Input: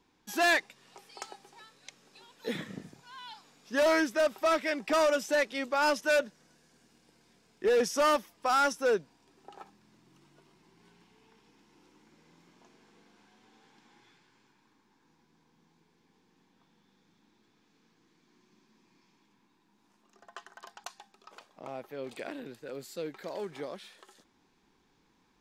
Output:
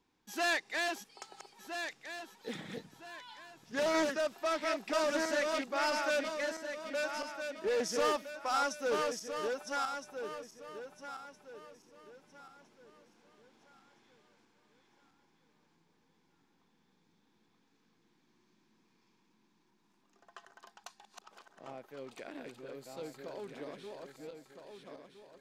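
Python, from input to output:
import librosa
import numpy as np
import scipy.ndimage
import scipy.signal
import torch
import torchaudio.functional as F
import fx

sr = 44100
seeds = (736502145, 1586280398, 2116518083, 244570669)

y = fx.reverse_delay_fb(x, sr, ms=657, feedback_pct=56, wet_db=-3.0)
y = fx.dynamic_eq(y, sr, hz=5700.0, q=0.71, threshold_db=-44.0, ratio=4.0, max_db=4)
y = fx.doppler_dist(y, sr, depth_ms=0.14)
y = y * 10.0 ** (-7.0 / 20.0)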